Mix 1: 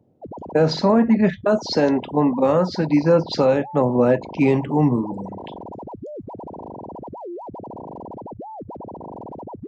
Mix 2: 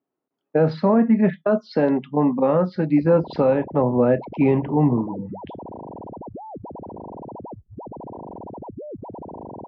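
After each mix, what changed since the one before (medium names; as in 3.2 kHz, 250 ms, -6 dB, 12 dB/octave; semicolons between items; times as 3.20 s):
background: entry +2.75 s; master: add distance through air 420 m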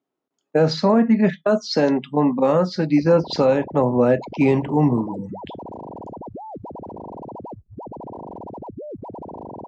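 master: remove distance through air 420 m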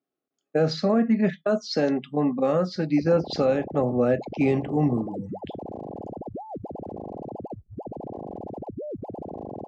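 speech -5.0 dB; master: add Butterworth band-stop 950 Hz, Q 4.6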